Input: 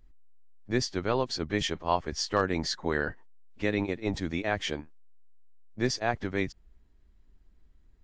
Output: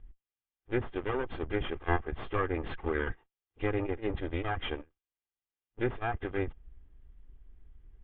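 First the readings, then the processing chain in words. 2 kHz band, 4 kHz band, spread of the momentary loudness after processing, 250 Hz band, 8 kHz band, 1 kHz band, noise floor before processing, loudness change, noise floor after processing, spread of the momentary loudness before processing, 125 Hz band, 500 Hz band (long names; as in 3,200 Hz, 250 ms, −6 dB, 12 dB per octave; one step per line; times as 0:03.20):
−4.0 dB, −12.0 dB, 4 LU, −4.5 dB, below −40 dB, −4.0 dB, −60 dBFS, −4.0 dB, below −85 dBFS, 5 LU, −1.5 dB, −2.5 dB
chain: lower of the sound and its delayed copy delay 2.5 ms
Butterworth low-pass 3,500 Hz 96 dB per octave
treble cut that deepens with the level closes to 1,900 Hz, closed at −28.5 dBFS
low-shelf EQ 120 Hz +8.5 dB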